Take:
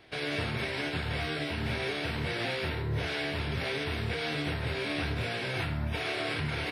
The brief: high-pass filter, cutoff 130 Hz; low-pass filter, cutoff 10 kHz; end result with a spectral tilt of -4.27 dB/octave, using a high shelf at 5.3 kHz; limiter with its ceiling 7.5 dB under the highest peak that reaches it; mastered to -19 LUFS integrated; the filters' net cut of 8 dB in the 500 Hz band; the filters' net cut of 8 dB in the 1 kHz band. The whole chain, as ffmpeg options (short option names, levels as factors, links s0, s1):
-af "highpass=130,lowpass=10000,equalizer=f=500:t=o:g=-8.5,equalizer=f=1000:t=o:g=-8.5,highshelf=f=5300:g=4.5,volume=7.94,alimiter=limit=0.282:level=0:latency=1"